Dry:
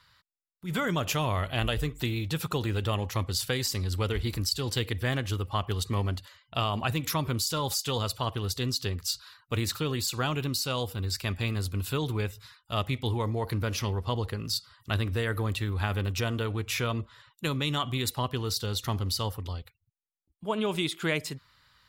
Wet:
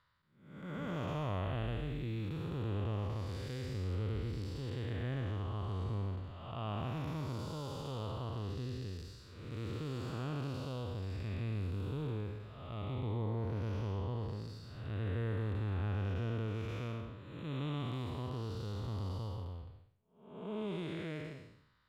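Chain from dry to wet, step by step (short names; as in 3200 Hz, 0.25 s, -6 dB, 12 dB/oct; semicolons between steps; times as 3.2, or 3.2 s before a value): time blur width 0.369 s; LPF 1300 Hz 6 dB/oct; gain -4.5 dB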